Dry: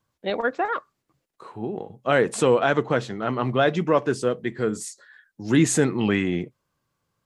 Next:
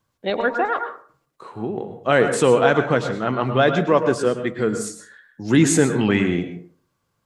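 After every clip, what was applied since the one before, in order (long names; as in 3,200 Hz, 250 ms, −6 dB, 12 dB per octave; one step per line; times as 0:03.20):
convolution reverb RT60 0.45 s, pre-delay 97 ms, DRR 8 dB
level +3 dB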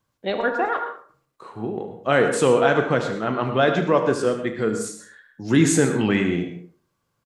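ambience of single reflections 36 ms −12 dB, 74 ms −12 dB
level −2 dB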